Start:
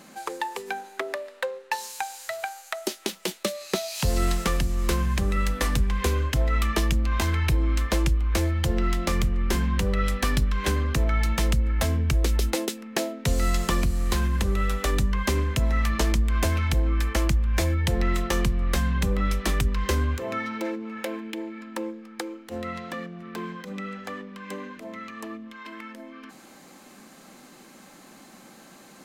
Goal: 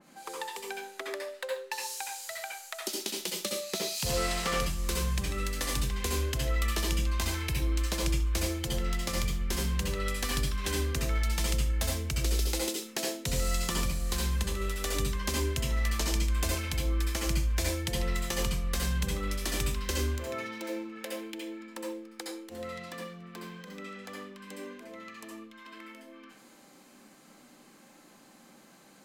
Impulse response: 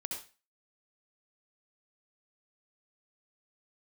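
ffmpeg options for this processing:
-filter_complex "[0:a]asettb=1/sr,asplit=3[a][b][c];[a]atrim=end=4.064[d];[b]atrim=start=4.06:end=4.59,asetpts=PTS-STARTPTS,afade=t=in:d=0.004:c=qsin,afade=t=out:st=0.526:d=0.004:c=qsin,asplit=2[e][f];[f]highpass=f=720:p=1,volume=18dB,asoftclip=type=tanh:threshold=-11.5dB[g];[e][g]amix=inputs=2:normalize=0,lowpass=f=1.9k:p=1,volume=-6dB[h];[c]atrim=start=4.586[i];[d][h]acrossfade=d=0.004:c1=hsin:c2=qsin[j];[j][i]acrossfade=d=0.004:c1=qsin:c2=hsin[k];[1:a]atrim=start_sample=2205[l];[k][l]afir=irnorm=-1:irlink=0,adynamicequalizer=threshold=0.00447:dfrequency=2700:dqfactor=0.7:tfrequency=2700:tqfactor=0.7:attack=5:release=100:ratio=0.375:range=4:mode=boostabove:tftype=highshelf,volume=-7.5dB"

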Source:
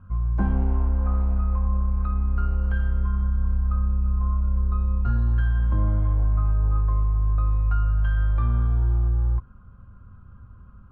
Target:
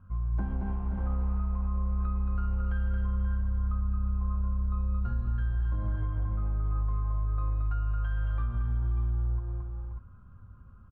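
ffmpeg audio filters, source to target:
-filter_complex "[0:a]asplit=2[a][b];[b]aecho=0:1:224|530|593:0.531|0.335|0.335[c];[a][c]amix=inputs=2:normalize=0,alimiter=limit=-16dB:level=0:latency=1:release=135,volume=-6.5dB"

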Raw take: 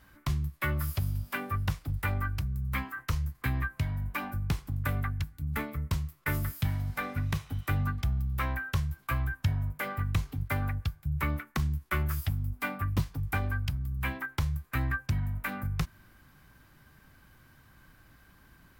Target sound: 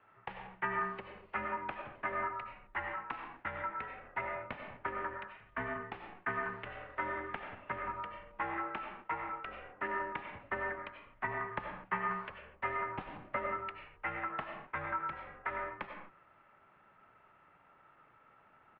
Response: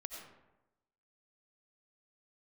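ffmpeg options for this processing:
-filter_complex "[0:a]highpass=f=350:t=q:w=0.5412,highpass=f=350:t=q:w=1.307,lowpass=f=3k:t=q:w=0.5176,lowpass=f=3k:t=q:w=0.7071,lowpass=f=3k:t=q:w=1.932,afreqshift=-170[a];[1:a]atrim=start_sample=2205,afade=t=out:st=0.31:d=0.01,atrim=end_sample=14112[b];[a][b]afir=irnorm=-1:irlink=0,asetrate=41625,aresample=44100,atempo=1.05946,volume=2.5dB"

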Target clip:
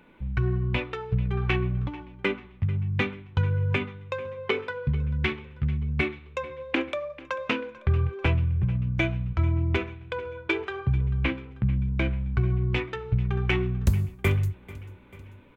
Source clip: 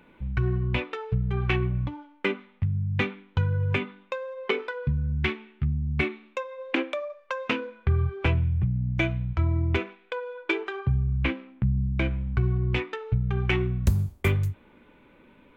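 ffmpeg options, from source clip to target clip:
-af "aecho=1:1:441|882|1323|1764:0.106|0.0572|0.0309|0.0167"

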